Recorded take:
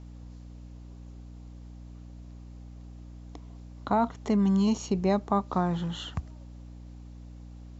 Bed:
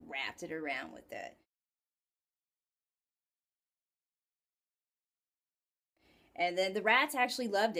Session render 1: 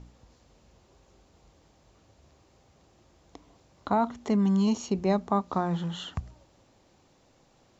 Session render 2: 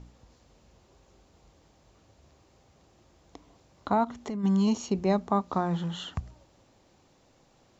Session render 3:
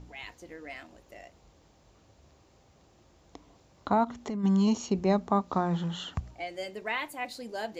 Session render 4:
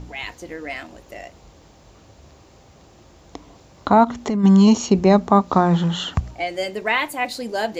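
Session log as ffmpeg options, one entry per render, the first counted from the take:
-af "bandreject=f=60:t=h:w=4,bandreject=f=120:t=h:w=4,bandreject=f=180:t=h:w=4,bandreject=f=240:t=h:w=4,bandreject=f=300:t=h:w=4"
-filter_complex "[0:a]asplit=3[a][b][c];[a]afade=t=out:st=4.03:d=0.02[d];[b]acompressor=threshold=-31dB:ratio=6:attack=3.2:release=140:knee=1:detection=peak,afade=t=in:st=4.03:d=0.02,afade=t=out:st=4.43:d=0.02[e];[c]afade=t=in:st=4.43:d=0.02[f];[d][e][f]amix=inputs=3:normalize=0"
-filter_complex "[1:a]volume=-5dB[a];[0:a][a]amix=inputs=2:normalize=0"
-af "volume=12dB,alimiter=limit=-3dB:level=0:latency=1"

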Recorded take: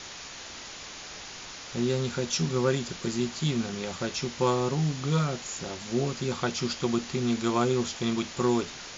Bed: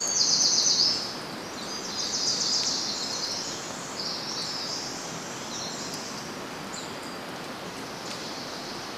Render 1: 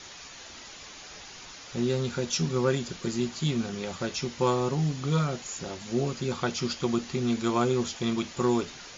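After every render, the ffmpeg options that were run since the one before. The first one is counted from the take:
-af "afftdn=nr=6:nf=-43"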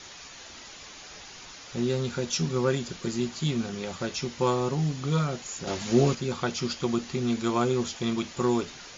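-filter_complex "[0:a]asettb=1/sr,asplit=3[a][b][c];[a]atrim=end=5.674[d];[b]atrim=start=5.67:end=6.15,asetpts=PTS-STARTPTS,afade=t=in:d=0.004:c=qsin,afade=t=out:st=0.476:d=0.004:c=qsin,acontrast=73[e];[c]atrim=start=6.146[f];[d][e]acrossfade=d=0.004:c1=hsin:c2=qsin[g];[g][f]acrossfade=d=0.004:c1=qsin:c2=hsin"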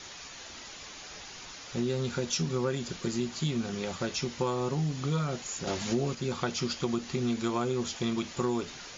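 -af "acompressor=threshold=-26dB:ratio=5"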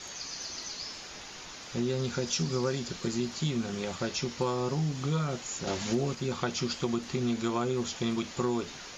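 -filter_complex "[1:a]volume=-18.5dB[a];[0:a][a]amix=inputs=2:normalize=0"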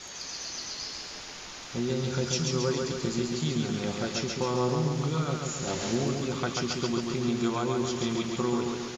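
-af "aecho=1:1:137|274|411|548|685|822|959|1096:0.668|0.388|0.225|0.13|0.0756|0.0439|0.0254|0.0148"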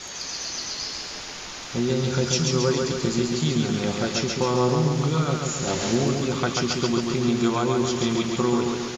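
-af "volume=6dB"

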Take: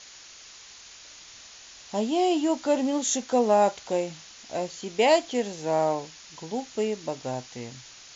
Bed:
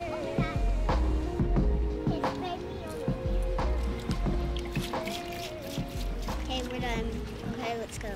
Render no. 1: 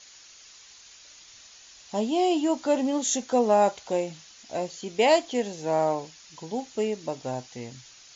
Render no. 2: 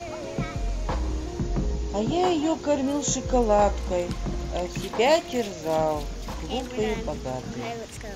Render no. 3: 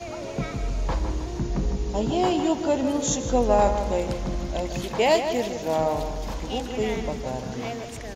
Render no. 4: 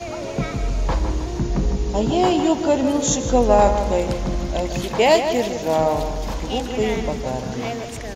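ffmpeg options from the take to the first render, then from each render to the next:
-af "afftdn=nr=6:nf=-48"
-filter_complex "[1:a]volume=-0.5dB[a];[0:a][a]amix=inputs=2:normalize=0"
-filter_complex "[0:a]asplit=2[a][b];[b]adelay=157,lowpass=f=3.8k:p=1,volume=-8dB,asplit=2[c][d];[d]adelay=157,lowpass=f=3.8k:p=1,volume=0.47,asplit=2[e][f];[f]adelay=157,lowpass=f=3.8k:p=1,volume=0.47,asplit=2[g][h];[h]adelay=157,lowpass=f=3.8k:p=1,volume=0.47,asplit=2[i][j];[j]adelay=157,lowpass=f=3.8k:p=1,volume=0.47[k];[a][c][e][g][i][k]amix=inputs=6:normalize=0"
-af "volume=5dB"

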